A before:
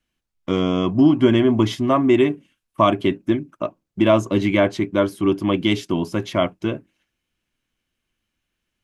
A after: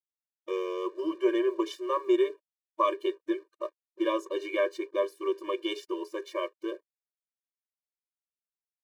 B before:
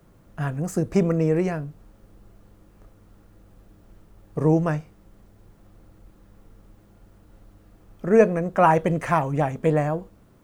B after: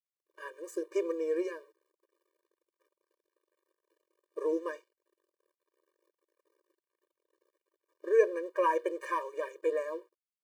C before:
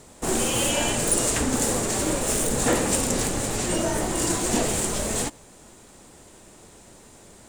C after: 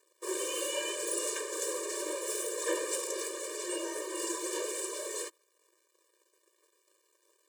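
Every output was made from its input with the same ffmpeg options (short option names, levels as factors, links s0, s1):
-af "aeval=exprs='sgn(val(0))*max(abs(val(0))-0.00473,0)':c=same,afftfilt=real='re*eq(mod(floor(b*sr/1024/310),2),1)':imag='im*eq(mod(floor(b*sr/1024/310),2),1)':win_size=1024:overlap=0.75,volume=0.447"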